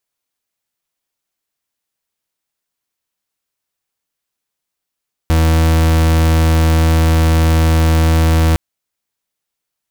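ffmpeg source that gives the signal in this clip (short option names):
-f lavfi -i "aevalsrc='0.282*(2*lt(mod(80.8*t,1),0.39)-1)':d=3.26:s=44100"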